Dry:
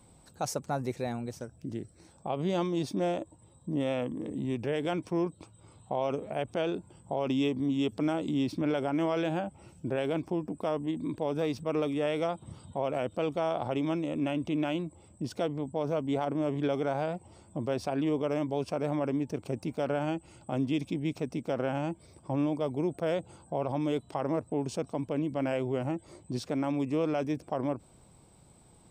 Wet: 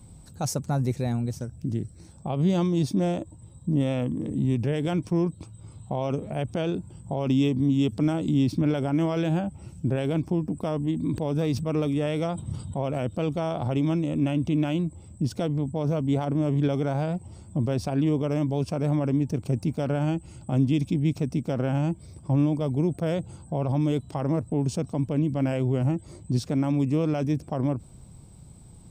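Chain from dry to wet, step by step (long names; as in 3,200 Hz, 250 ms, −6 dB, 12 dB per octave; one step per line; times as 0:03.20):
bass and treble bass +14 dB, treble +6 dB
0:10.55–0:12.95: level that may fall only so fast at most 95 dB per second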